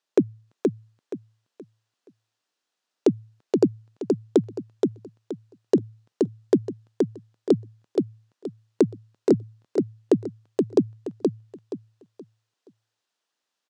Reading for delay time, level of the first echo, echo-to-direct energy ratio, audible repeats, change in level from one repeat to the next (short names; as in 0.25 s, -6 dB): 0.474 s, -3.5 dB, -3.0 dB, 3, -11.0 dB